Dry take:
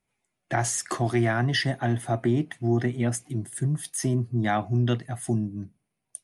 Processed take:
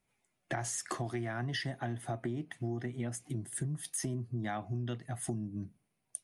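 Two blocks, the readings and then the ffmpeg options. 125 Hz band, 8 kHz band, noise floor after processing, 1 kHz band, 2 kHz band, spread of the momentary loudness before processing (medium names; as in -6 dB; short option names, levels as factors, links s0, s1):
-11.5 dB, -7.5 dB, -81 dBFS, -11.5 dB, -11.0 dB, 7 LU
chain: -af "acompressor=threshold=0.02:ratio=6"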